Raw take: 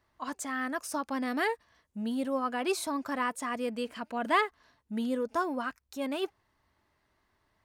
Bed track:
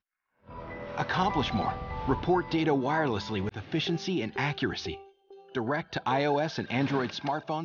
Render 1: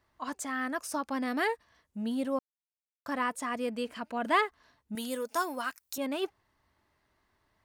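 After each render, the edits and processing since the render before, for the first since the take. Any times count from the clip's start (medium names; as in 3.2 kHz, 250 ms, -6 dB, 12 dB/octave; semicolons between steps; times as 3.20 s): 2.39–3.06 s: mute; 4.95–5.98 s: RIAA curve recording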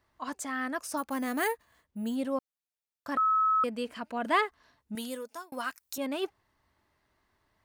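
0.97–2.16 s: careless resampling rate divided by 4×, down filtered, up hold; 3.17–3.64 s: bleep 1.29 kHz -22 dBFS; 4.99–5.52 s: fade out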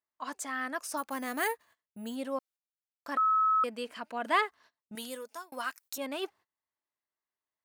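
high-pass 460 Hz 6 dB/octave; gate -56 dBFS, range -22 dB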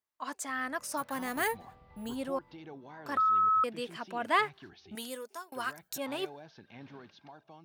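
add bed track -21.5 dB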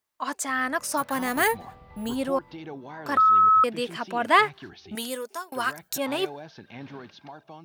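trim +8.5 dB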